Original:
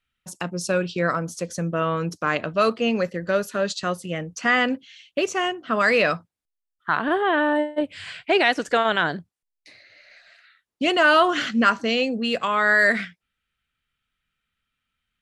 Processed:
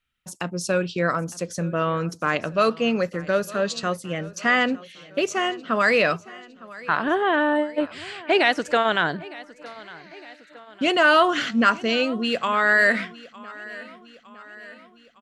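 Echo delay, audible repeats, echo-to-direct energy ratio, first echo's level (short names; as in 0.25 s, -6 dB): 0.909 s, 3, -18.5 dB, -20.0 dB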